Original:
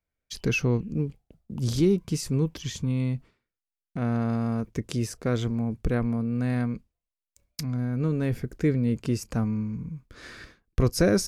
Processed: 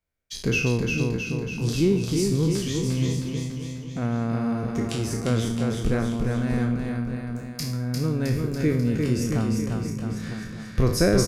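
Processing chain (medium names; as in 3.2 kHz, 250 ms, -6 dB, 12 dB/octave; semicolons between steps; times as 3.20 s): spectral sustain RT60 0.53 s; bouncing-ball echo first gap 350 ms, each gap 0.9×, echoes 5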